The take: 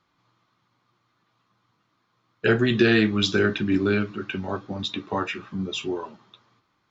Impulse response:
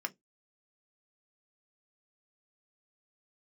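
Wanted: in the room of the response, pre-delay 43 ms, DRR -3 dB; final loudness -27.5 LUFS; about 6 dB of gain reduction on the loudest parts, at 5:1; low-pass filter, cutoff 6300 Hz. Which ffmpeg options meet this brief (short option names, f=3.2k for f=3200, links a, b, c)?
-filter_complex "[0:a]lowpass=6.3k,acompressor=threshold=-21dB:ratio=5,asplit=2[a][b];[1:a]atrim=start_sample=2205,adelay=43[c];[b][c]afir=irnorm=-1:irlink=0,volume=1dB[d];[a][d]amix=inputs=2:normalize=0,volume=-3.5dB"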